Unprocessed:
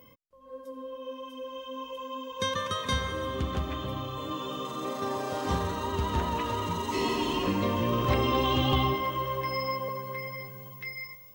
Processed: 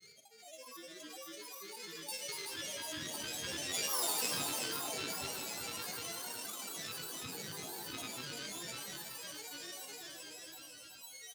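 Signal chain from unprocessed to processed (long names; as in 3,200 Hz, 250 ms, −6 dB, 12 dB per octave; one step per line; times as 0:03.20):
samples sorted by size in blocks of 16 samples
source passing by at 0:04.06, 38 m/s, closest 5.1 metres
high-pass filter 260 Hz 12 dB per octave
parametric band 7,300 Hz +11 dB 1.5 octaves
phaser with its sweep stopped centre 340 Hz, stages 6
granular cloud, pitch spread up and down by 12 semitones
single-tap delay 374 ms −9 dB
four-comb reverb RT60 0.52 s, DRR 9.5 dB
envelope flattener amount 50%
level +2 dB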